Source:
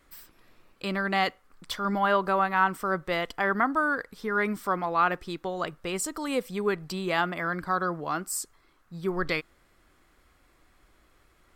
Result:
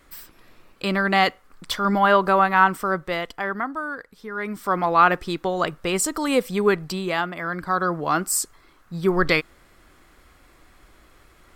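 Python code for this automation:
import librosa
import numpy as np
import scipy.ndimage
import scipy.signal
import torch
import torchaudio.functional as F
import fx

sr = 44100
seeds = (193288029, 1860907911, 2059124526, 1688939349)

y = fx.gain(x, sr, db=fx.line((2.63, 7.0), (3.8, -4.0), (4.36, -4.0), (4.84, 8.0), (6.75, 8.0), (7.31, 0.0), (8.18, 9.0)))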